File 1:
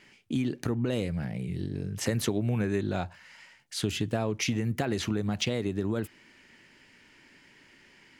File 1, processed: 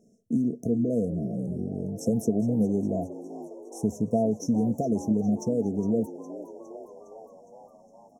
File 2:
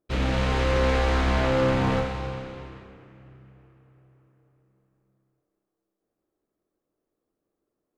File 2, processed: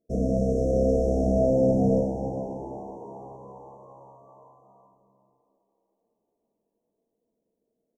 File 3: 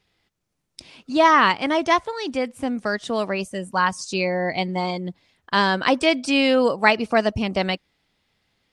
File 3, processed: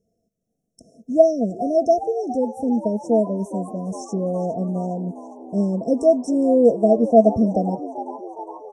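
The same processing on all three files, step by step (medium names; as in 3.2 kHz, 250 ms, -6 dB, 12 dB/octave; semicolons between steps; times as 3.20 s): brick-wall FIR band-stop 720–5300 Hz; small resonant body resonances 220/460/660 Hz, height 14 dB, ringing for 45 ms; on a send: frequency-shifting echo 410 ms, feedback 65%, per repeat +71 Hz, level -15.5 dB; on the sum: trim -5.5 dB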